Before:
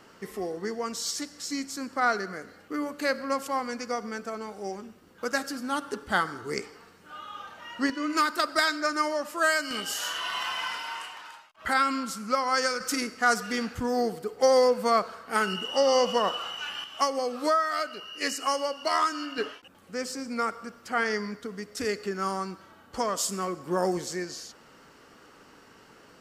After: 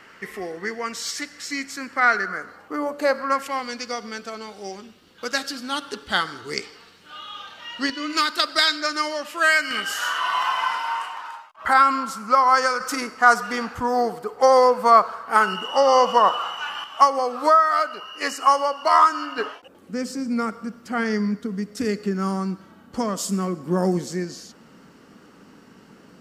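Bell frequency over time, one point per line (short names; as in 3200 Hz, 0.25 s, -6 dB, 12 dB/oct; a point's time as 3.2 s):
bell +13 dB 1.3 oct
2.07 s 2000 Hz
3 s 610 Hz
3.66 s 3600 Hz
9.09 s 3600 Hz
10.34 s 1000 Hz
19.49 s 1000 Hz
19.96 s 200 Hz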